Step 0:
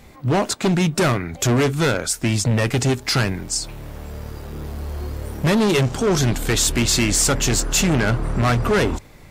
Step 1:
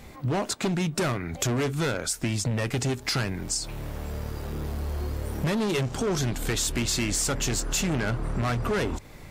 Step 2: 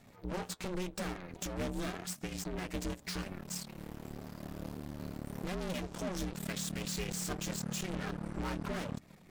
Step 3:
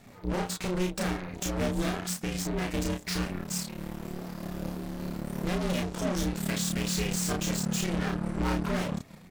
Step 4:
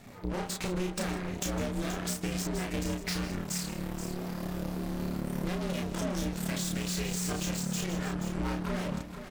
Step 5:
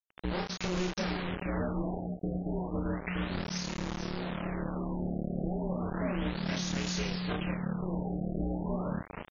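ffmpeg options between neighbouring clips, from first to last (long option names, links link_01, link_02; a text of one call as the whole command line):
ffmpeg -i in.wav -af "acompressor=threshold=-27dB:ratio=3" out.wav
ffmpeg -i in.wav -af "flanger=delay=1.9:depth=5.3:regen=46:speed=0.89:shape=sinusoidal,aeval=exprs='0.106*(cos(1*acos(clip(val(0)/0.106,-1,1)))-cos(1*PI/2))+0.0188*(cos(8*acos(clip(val(0)/0.106,-1,1)))-cos(8*PI/2))':channel_layout=same,aeval=exprs='val(0)*sin(2*PI*180*n/s)':channel_layout=same,volume=-6.5dB" out.wav
ffmpeg -i in.wav -filter_complex "[0:a]asplit=2[link_01][link_02];[link_02]adelay=33,volume=-2.5dB[link_03];[link_01][link_03]amix=inputs=2:normalize=0,volume=5.5dB" out.wav
ffmpeg -i in.wav -af "acompressor=threshold=-31dB:ratio=6,aecho=1:1:154|159|478:0.1|0.15|0.316,volume=2dB" out.wav
ffmpeg -i in.wav -af "acrusher=bits=5:mix=0:aa=0.000001,afftfilt=real='re*lt(b*sr/1024,770*pow(7200/770,0.5+0.5*sin(2*PI*0.33*pts/sr)))':imag='im*lt(b*sr/1024,770*pow(7200/770,0.5+0.5*sin(2*PI*0.33*pts/sr)))':win_size=1024:overlap=0.75" out.wav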